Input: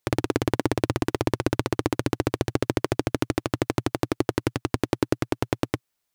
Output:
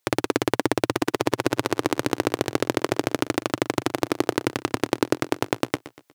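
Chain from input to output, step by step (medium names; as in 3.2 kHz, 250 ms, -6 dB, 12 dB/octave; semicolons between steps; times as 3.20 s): recorder AGC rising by 6.8 dB/s; high-pass 320 Hz 6 dB/octave; on a send: feedback delay 120 ms, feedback 41%, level -16 dB; on the sum: trim +4 dB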